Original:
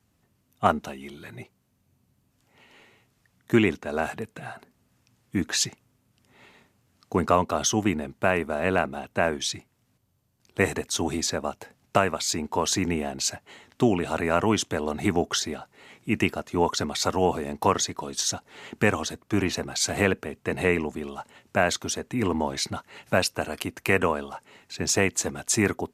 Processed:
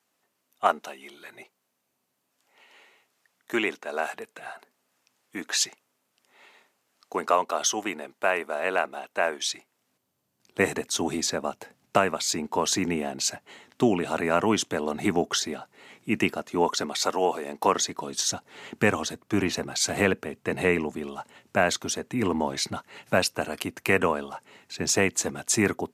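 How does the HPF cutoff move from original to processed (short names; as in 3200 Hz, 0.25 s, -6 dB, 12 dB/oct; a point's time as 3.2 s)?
9.51 s 480 Hz
10.63 s 150 Hz
16.33 s 150 Hz
17.37 s 390 Hz
18.18 s 110 Hz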